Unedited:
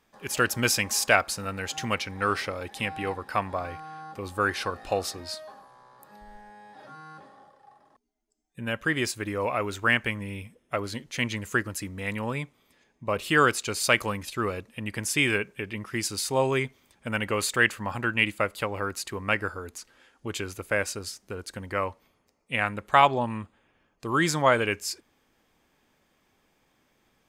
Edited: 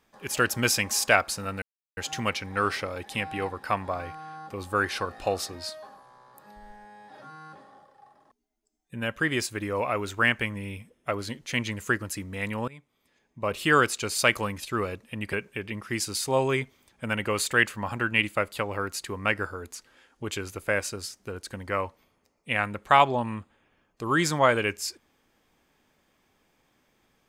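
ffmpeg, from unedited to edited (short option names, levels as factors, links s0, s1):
-filter_complex "[0:a]asplit=4[s0][s1][s2][s3];[s0]atrim=end=1.62,asetpts=PTS-STARTPTS,afade=t=out:st=1.616:d=0.004:c=hsin,apad=pad_dur=0.35[s4];[s1]atrim=start=1.62:end=12.33,asetpts=PTS-STARTPTS,afade=t=in:d=0.004:c=hsin,afade=t=out:st=10.706:d=0.004:c=hsin:silence=0.112202[s5];[s2]atrim=start=12.33:end=14.982,asetpts=PTS-STARTPTS,afade=t=in:d=0.89:silence=0.112202[s6];[s3]atrim=start=15.358[s7];[s4][s5][s6]concat=n=3:v=0:a=1[s8];[s8][s7]acrossfade=d=0.004:c1=hsin:c2=hsin"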